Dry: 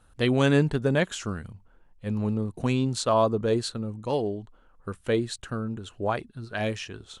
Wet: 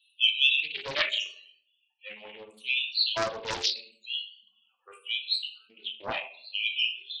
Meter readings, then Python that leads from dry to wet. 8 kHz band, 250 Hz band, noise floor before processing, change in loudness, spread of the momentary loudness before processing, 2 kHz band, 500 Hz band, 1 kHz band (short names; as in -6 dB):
-6.0 dB, -24.5 dB, -59 dBFS, -0.5 dB, 14 LU, +4.5 dB, -13.5 dB, -8.0 dB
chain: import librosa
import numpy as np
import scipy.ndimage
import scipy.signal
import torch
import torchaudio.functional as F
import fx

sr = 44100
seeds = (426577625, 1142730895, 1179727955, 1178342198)

y = fx.high_shelf_res(x, sr, hz=1900.0, db=11.5, q=3.0)
y = fx.filter_lfo_highpass(y, sr, shape='square', hz=0.79, low_hz=810.0, high_hz=3200.0, q=1.4)
y = fx.spec_topn(y, sr, count=16)
y = fx.room_shoebox(y, sr, seeds[0], volume_m3=68.0, walls='mixed', distance_m=0.67)
y = fx.doppler_dist(y, sr, depth_ms=0.62)
y = y * librosa.db_to_amplitude(-6.5)